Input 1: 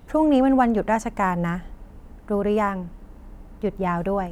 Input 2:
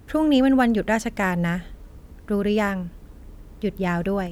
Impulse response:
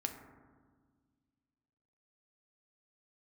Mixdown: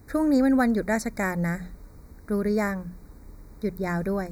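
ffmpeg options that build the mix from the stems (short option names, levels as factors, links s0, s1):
-filter_complex "[0:a]highpass=990,volume=0.237[s0];[1:a]highshelf=f=8500:g=5.5,volume=0.75[s1];[s0][s1]amix=inputs=2:normalize=0,asuperstop=centerf=3000:order=20:qfactor=2.3,bandreject=f=60:t=h:w=6,bandreject=f=120:t=h:w=6,bandreject=f=180:t=h:w=6"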